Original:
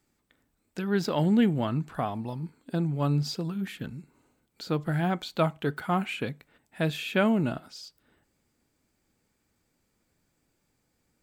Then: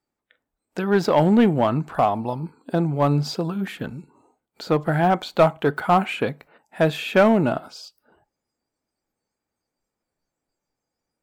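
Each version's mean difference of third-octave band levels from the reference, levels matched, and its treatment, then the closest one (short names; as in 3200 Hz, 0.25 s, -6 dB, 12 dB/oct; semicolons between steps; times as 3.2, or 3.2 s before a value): 3.0 dB: spectral noise reduction 17 dB; bell 740 Hz +10.5 dB 2.3 oct; in parallel at -8 dB: wavefolder -14.5 dBFS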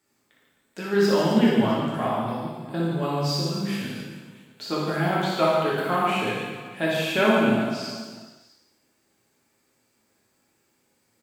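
10.0 dB: HPF 300 Hz 6 dB/oct; reverse bouncing-ball echo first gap 60 ms, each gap 1.4×, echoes 5; non-linear reverb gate 0.36 s falling, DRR -4.5 dB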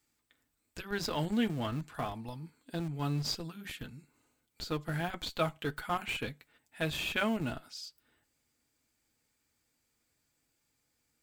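6.0 dB: tilt shelf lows -5 dB, about 1300 Hz; notch comb 190 Hz; in parallel at -7 dB: Schmitt trigger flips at -30 dBFS; on the sum: gain -3.5 dB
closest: first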